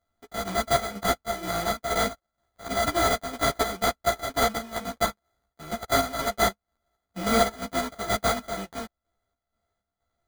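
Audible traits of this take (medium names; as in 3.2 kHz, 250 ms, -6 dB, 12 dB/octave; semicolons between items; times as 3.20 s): a buzz of ramps at a fixed pitch in blocks of 64 samples; chopped level 2.1 Hz, depth 60%, duty 60%; aliases and images of a low sample rate 2.7 kHz, jitter 0%; a shimmering, thickened sound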